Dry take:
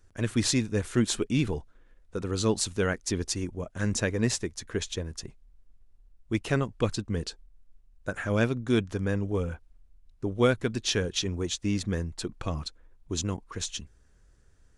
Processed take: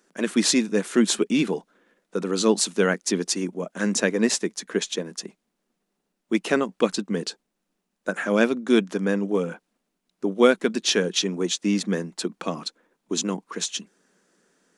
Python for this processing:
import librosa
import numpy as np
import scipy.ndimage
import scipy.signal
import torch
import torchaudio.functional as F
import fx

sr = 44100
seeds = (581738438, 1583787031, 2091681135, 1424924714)

y = scipy.signal.sosfilt(scipy.signal.ellip(4, 1.0, 40, 180.0, 'highpass', fs=sr, output='sos'), x)
y = F.gain(torch.from_numpy(y), 7.0).numpy()